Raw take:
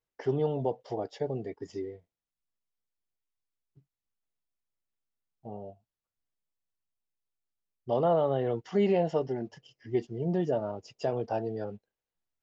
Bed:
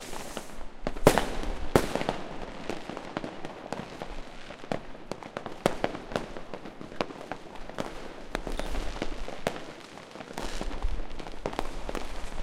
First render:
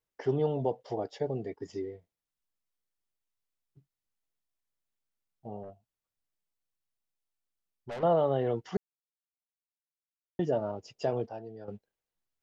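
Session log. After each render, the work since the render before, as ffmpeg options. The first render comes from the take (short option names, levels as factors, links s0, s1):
-filter_complex "[0:a]asettb=1/sr,asplit=3[s0][s1][s2];[s0]atrim=end=5.634[s3];[s1]atrim=start=5.63:end=8.03,asetpts=PTS-STARTPTS,afade=t=in:d=0.004:c=qsin,afade=t=out:st=2.396:d=0.004:c=qsin,aeval=exprs='(tanh(63.1*val(0)+0.25)-tanh(0.25))/63.1':c=same[s4];[s2]atrim=start=8.026[s5];[s3][s4]acrossfade=d=0.004:c1=hsin:c2=qsin[s6];[s6][s5]acrossfade=d=0.004:c1=qsin:c2=hsin,asplit=5[s7][s8][s9][s10][s11];[s7]atrim=end=8.77,asetpts=PTS-STARTPTS,afade=t=out:st=8.766:d=0.004:c=hsin[s12];[s8]atrim=start=8.77:end=10.39,asetpts=PTS-STARTPTS,volume=0[s13];[s9]atrim=start=10.39:end=11.282,asetpts=PTS-STARTPTS,afade=t=in:d=0.004:c=hsin[s14];[s10]atrim=start=11.278:end=11.682,asetpts=PTS-STARTPTS,volume=0.299[s15];[s11]atrim=start=11.678[s16];[s12][s13][s14]concat=n=3:v=0:a=1[s17];[s17][s15]acrossfade=d=0.004:c1=hsin:c2=hsin[s18];[s18][s16]acrossfade=d=0.004:c1=hsin:c2=hsin"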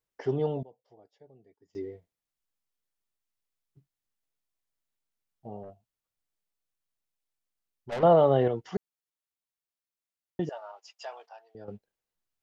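-filter_complex "[0:a]asettb=1/sr,asplit=3[s0][s1][s2];[s0]atrim=end=7.924[s3];[s1]atrim=start=7.92:end=8.48,asetpts=PTS-STARTPTS,afade=t=in:d=0.004:c=qsin,afade=t=out:st=0.556:d=0.004:c=qsin,acontrast=54[s4];[s2]atrim=start=8.476[s5];[s3][s4]acrossfade=d=0.004:c1=hsin:c2=qsin[s6];[s6][s5]acrossfade=d=0.004:c1=qsin:c2=hsin,asettb=1/sr,asplit=3[s7][s8][s9];[s7]atrim=end=10.494[s10];[s8]atrim=start=10.49:end=11.55,asetpts=PTS-STARTPTS,afade=t=in:d=0.004:c=qsin,afade=t=out:st=1.056:d=0.004:c=qsin,highpass=f=840:w=0.5412,highpass=f=840:w=1.3066[s11];[s9]atrim=start=11.546[s12];[s10][s11]acrossfade=d=0.004:c1=hsin:c2=qsin[s13];[s13][s12]acrossfade=d=0.004:c1=qsin:c2=hsin,asplit=3[s14][s15][s16];[s14]atrim=end=0.63,asetpts=PTS-STARTPTS,afade=t=out:st=0.48:d=0.15:c=log:silence=0.0668344[s17];[s15]atrim=start=0.63:end=1.75,asetpts=PTS-STARTPTS,volume=0.0668[s18];[s16]atrim=start=1.75,asetpts=PTS-STARTPTS,afade=t=in:d=0.15:c=log:silence=0.0668344[s19];[s17][s18][s19]concat=n=3:v=0:a=1"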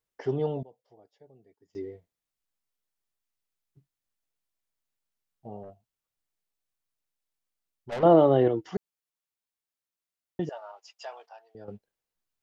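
-filter_complex "[0:a]asettb=1/sr,asplit=3[s0][s1][s2];[s0]atrim=end=8.054[s3];[s1]atrim=start=8.05:end=8.71,asetpts=PTS-STARTPTS,afade=t=in:d=0.004:c=qsin,afade=t=out:st=0.656:d=0.004:c=qsin,equalizer=f=320:w=4.5:g=14[s4];[s2]atrim=start=8.706[s5];[s3][s4]acrossfade=d=0.004:c1=hsin:c2=qsin[s6];[s6][s5]acrossfade=d=0.004:c1=qsin:c2=hsin"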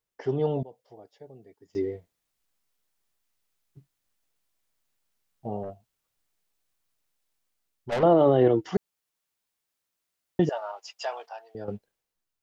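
-af "dynaudnorm=f=110:g=11:m=2.66,alimiter=limit=0.299:level=0:latency=1:release=31"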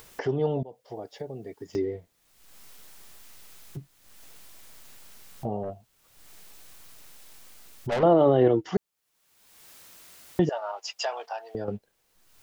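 -af "acompressor=mode=upward:threshold=0.0562:ratio=2.5"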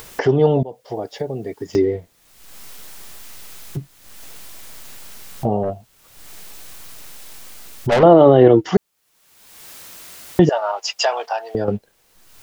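-af "volume=3.76,alimiter=limit=0.891:level=0:latency=1"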